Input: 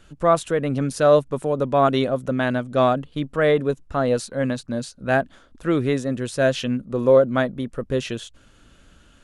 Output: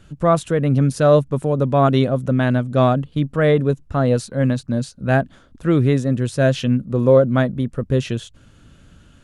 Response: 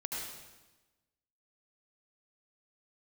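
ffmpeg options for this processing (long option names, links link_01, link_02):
-af "equalizer=frequency=120:width_type=o:width=2:gain=10.5"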